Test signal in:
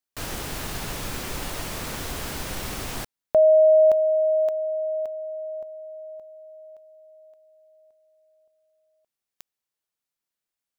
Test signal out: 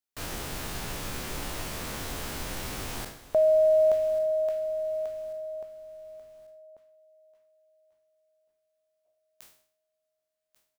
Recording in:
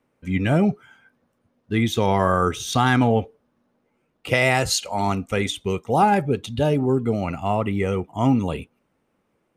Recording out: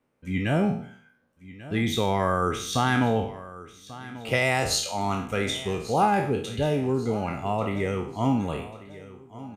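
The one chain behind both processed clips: spectral sustain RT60 0.53 s; feedback delay 1140 ms, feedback 41%, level -17 dB; trim -5.5 dB

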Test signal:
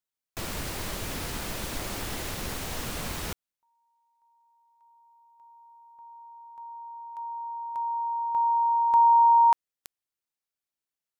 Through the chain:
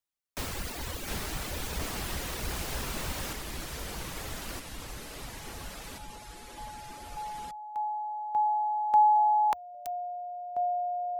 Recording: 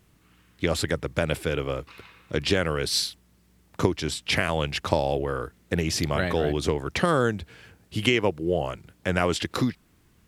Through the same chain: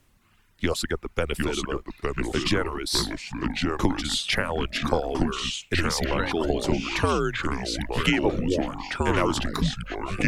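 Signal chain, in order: frequency shift -85 Hz; reverb removal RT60 1.7 s; ever faster or slower copies 637 ms, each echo -3 st, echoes 3

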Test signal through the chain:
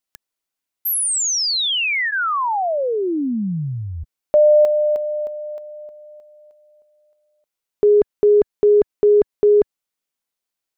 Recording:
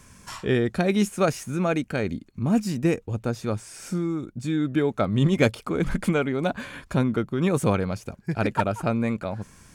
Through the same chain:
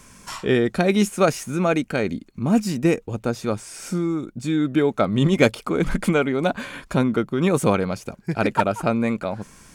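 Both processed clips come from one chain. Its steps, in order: peaking EQ 88 Hz -8 dB 1.3 oct; band-stop 1.7 kHz, Q 23; trim +4.5 dB

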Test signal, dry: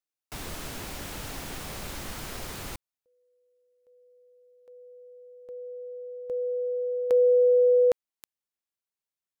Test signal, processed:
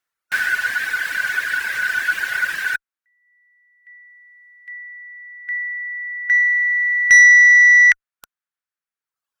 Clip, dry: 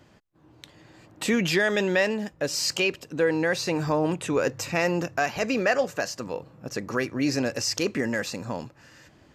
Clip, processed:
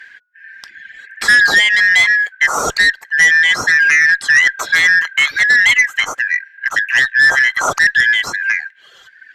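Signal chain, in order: four frequency bands reordered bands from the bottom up 4123; reverb removal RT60 1.4 s; peaking EQ 1.5 kHz +14 dB 1.2 oct; Chebyshev shaper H 2 -23 dB, 5 -14 dB, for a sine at -2.5 dBFS; trim +1 dB

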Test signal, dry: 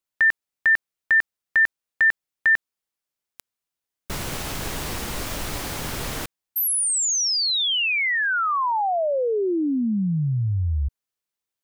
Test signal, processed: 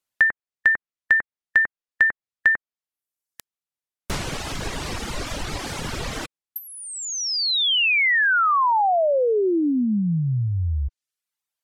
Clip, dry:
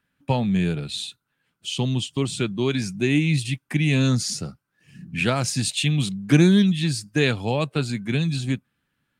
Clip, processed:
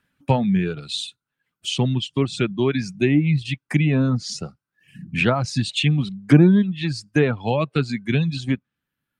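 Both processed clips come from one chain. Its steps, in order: low-pass that closes with the level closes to 1.4 kHz, closed at -15.5 dBFS; reverb removal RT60 1.4 s; trim +4 dB

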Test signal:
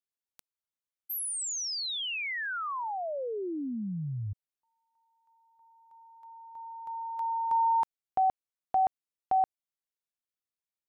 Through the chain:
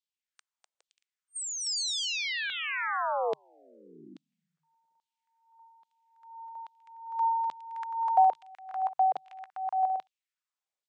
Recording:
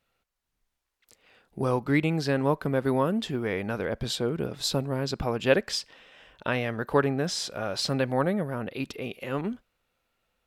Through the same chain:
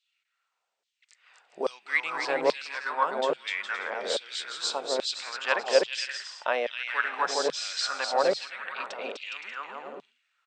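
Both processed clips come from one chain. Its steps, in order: bouncing-ball echo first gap 250 ms, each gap 0.65×, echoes 5; LFO high-pass saw down 1.2 Hz 470–3700 Hz; FFT band-pass 150–8700 Hz; trim -1.5 dB

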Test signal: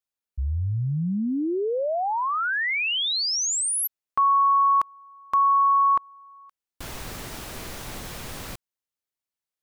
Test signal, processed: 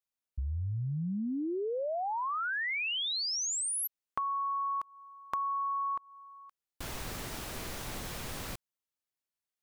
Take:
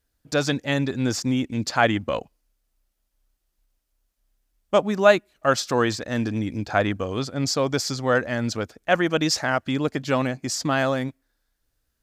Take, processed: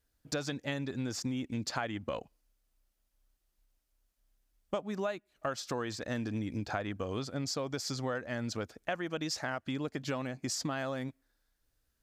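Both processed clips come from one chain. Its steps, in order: compression 12:1, threshold -28 dBFS; trim -3.5 dB

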